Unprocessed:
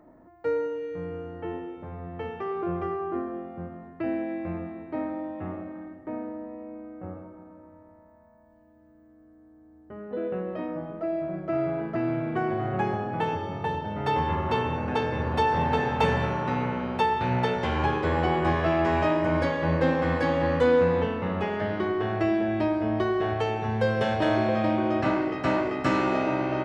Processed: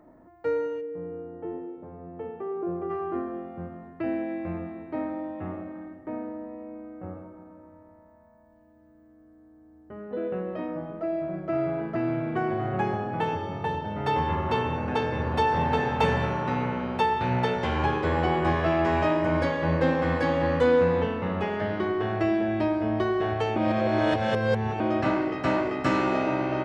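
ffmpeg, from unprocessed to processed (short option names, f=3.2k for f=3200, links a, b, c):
-filter_complex "[0:a]asplit=3[a][b][c];[a]afade=t=out:st=0.8:d=0.02[d];[b]bandpass=f=360:t=q:w=0.78,afade=t=in:st=0.8:d=0.02,afade=t=out:st=2.89:d=0.02[e];[c]afade=t=in:st=2.89:d=0.02[f];[d][e][f]amix=inputs=3:normalize=0,asplit=3[g][h][i];[g]atrim=end=23.562[j];[h]atrim=start=23.558:end=24.802,asetpts=PTS-STARTPTS,areverse[k];[i]atrim=start=24.798[l];[j][k]acrossfade=d=0.004:c1=hsin:c2=hsin[m];[m][l]acrossfade=d=0.004:c1=hsin:c2=hsin"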